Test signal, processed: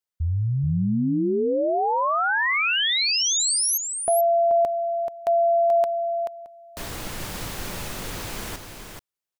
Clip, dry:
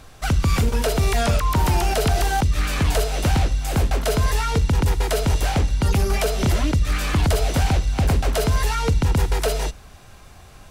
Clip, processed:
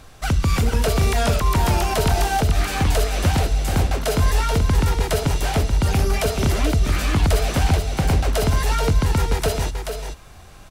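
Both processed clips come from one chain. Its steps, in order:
single-tap delay 432 ms −6.5 dB

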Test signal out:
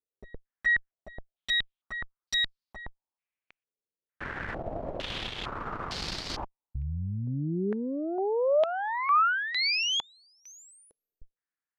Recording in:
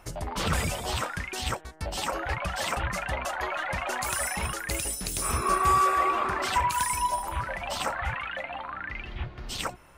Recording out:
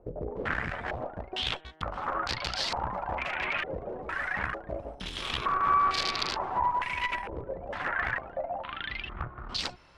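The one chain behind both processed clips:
harmonic generator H 4 −7 dB, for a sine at −12.5 dBFS
downward compressor 5 to 1, threshold −24 dBFS
wrap-around overflow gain 19 dB
low-pass on a step sequencer 2.2 Hz 470–4,600 Hz
level −4 dB

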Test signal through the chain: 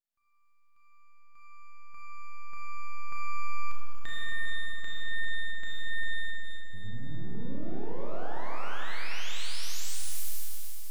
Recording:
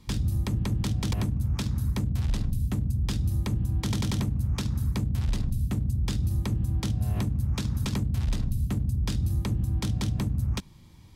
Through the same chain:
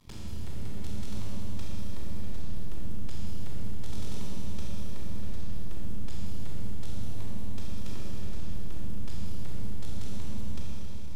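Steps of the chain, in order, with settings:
downward compressor 2 to 1, threshold −46 dBFS
half-wave rectification
four-comb reverb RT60 3.9 s, combs from 26 ms, DRR −6 dB
level −1.5 dB

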